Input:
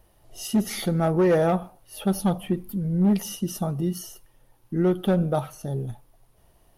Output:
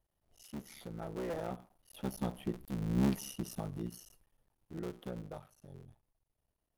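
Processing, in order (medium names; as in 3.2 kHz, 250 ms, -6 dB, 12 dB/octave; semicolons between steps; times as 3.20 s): cycle switcher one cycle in 3, muted; Doppler pass-by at 2.96 s, 5 m/s, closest 2.9 m; trim -8 dB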